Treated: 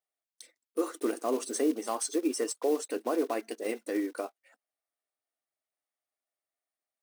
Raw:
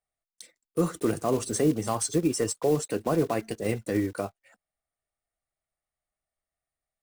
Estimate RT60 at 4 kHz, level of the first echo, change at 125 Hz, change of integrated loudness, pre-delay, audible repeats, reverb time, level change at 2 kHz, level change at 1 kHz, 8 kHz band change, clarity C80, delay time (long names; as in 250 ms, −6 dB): no reverb audible, no echo audible, below −30 dB, −4.0 dB, no reverb audible, no echo audible, no reverb audible, −3.5 dB, −3.5 dB, −4.0 dB, no reverb audible, no echo audible